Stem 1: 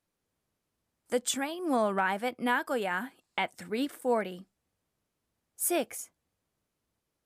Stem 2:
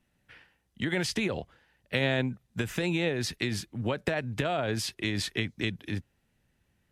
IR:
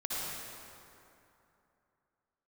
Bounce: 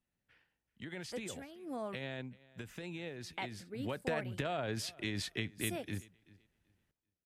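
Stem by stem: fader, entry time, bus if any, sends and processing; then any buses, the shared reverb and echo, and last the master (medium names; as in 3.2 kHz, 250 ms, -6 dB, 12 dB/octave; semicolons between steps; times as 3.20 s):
-10.5 dB, 0.00 s, muted 1.96–3.28 s, no send, no echo send, gain riding 2 s; rotary cabinet horn 0.85 Hz
3.68 s -15.5 dB -> 3.97 s -7.5 dB, 0.00 s, no send, echo send -22 dB, none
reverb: none
echo: feedback delay 384 ms, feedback 20%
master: none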